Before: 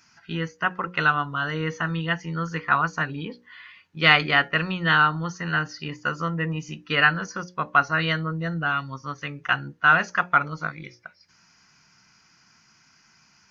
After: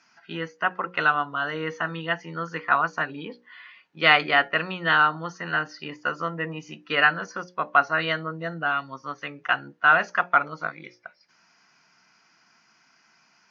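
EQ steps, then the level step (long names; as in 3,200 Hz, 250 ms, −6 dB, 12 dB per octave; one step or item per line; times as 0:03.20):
high-pass filter 260 Hz 12 dB per octave
high-frequency loss of the air 99 metres
parametric band 670 Hz +5 dB 0.43 octaves
0.0 dB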